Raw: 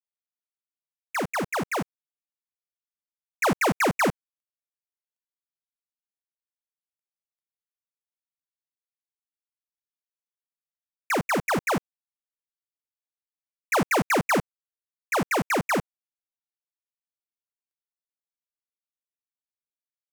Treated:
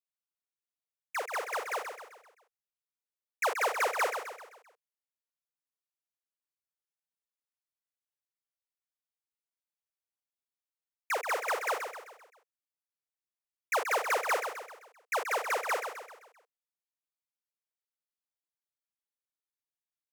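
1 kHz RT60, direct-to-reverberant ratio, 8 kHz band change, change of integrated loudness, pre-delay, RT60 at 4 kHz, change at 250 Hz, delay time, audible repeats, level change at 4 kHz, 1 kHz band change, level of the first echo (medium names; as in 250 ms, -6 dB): no reverb, no reverb, -5.5 dB, -6.5 dB, no reverb, no reverb, -29.5 dB, 130 ms, 5, -5.5 dB, -5.0 dB, -7.5 dB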